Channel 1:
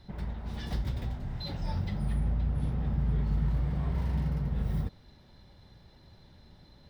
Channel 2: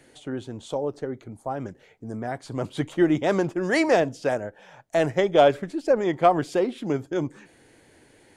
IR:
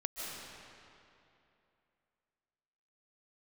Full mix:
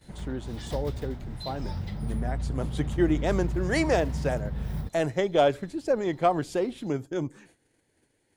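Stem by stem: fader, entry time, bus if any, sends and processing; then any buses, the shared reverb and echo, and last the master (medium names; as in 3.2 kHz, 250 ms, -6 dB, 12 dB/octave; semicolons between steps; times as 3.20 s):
-1.5 dB, 0.00 s, no send, none
-5.5 dB, 0.00 s, no send, bass shelf 220 Hz +5.5 dB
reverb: none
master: treble shelf 5.3 kHz +7 dB; gate -56 dBFS, range -13 dB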